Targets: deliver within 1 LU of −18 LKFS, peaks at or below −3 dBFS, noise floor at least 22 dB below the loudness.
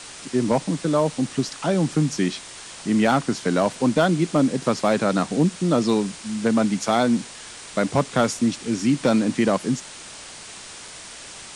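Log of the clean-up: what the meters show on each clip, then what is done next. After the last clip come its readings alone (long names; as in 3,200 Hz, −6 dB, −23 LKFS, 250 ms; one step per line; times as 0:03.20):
share of clipped samples 0.2%; peaks flattened at −10.5 dBFS; background noise floor −40 dBFS; target noise floor −44 dBFS; integrated loudness −22.0 LKFS; sample peak −10.5 dBFS; target loudness −18.0 LKFS
→ clipped peaks rebuilt −10.5 dBFS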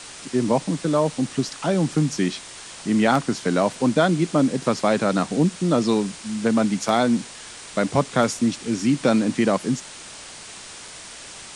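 share of clipped samples 0.0%; background noise floor −40 dBFS; target noise floor −44 dBFS
→ broadband denoise 6 dB, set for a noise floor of −40 dBFS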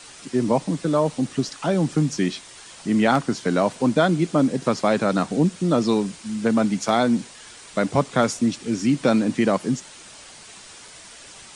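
background noise floor −44 dBFS; integrated loudness −22.0 LKFS; sample peak −5.5 dBFS; target loudness −18.0 LKFS
→ level +4 dB
brickwall limiter −3 dBFS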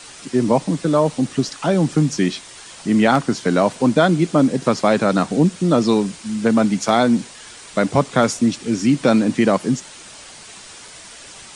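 integrated loudness −18.0 LKFS; sample peak −3.0 dBFS; background noise floor −40 dBFS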